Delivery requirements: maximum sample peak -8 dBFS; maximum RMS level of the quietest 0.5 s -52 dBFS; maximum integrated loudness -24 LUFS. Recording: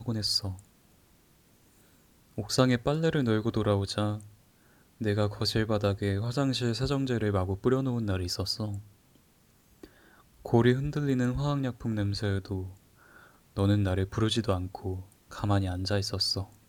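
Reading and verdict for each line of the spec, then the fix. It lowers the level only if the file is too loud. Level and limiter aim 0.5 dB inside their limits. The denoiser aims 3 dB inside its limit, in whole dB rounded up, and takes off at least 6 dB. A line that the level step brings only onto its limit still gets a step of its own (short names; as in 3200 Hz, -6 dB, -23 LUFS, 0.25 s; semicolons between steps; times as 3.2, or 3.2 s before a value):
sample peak -8.5 dBFS: OK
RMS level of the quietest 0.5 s -63 dBFS: OK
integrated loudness -29.0 LUFS: OK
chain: none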